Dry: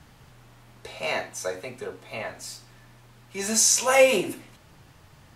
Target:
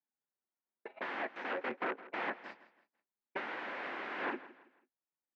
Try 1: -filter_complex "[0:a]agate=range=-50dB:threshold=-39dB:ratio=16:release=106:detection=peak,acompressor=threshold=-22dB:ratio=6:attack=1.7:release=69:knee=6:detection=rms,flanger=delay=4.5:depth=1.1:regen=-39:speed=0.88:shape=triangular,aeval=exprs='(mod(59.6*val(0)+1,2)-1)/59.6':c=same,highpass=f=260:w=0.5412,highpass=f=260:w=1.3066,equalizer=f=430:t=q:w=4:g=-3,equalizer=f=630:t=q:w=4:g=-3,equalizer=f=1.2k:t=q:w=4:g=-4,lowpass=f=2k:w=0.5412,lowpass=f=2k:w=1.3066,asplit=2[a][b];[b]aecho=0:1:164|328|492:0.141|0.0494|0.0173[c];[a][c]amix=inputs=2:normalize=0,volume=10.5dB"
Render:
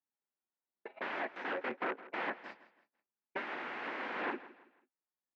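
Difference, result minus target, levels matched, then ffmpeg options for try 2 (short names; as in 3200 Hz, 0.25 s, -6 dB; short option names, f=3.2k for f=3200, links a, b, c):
compressor: peak gain reduction +6 dB
-filter_complex "[0:a]agate=range=-50dB:threshold=-39dB:ratio=16:release=106:detection=peak,acompressor=threshold=-14.5dB:ratio=6:attack=1.7:release=69:knee=6:detection=rms,flanger=delay=4.5:depth=1.1:regen=-39:speed=0.88:shape=triangular,aeval=exprs='(mod(59.6*val(0)+1,2)-1)/59.6':c=same,highpass=f=260:w=0.5412,highpass=f=260:w=1.3066,equalizer=f=430:t=q:w=4:g=-3,equalizer=f=630:t=q:w=4:g=-3,equalizer=f=1.2k:t=q:w=4:g=-4,lowpass=f=2k:w=0.5412,lowpass=f=2k:w=1.3066,asplit=2[a][b];[b]aecho=0:1:164|328|492:0.141|0.0494|0.0173[c];[a][c]amix=inputs=2:normalize=0,volume=10.5dB"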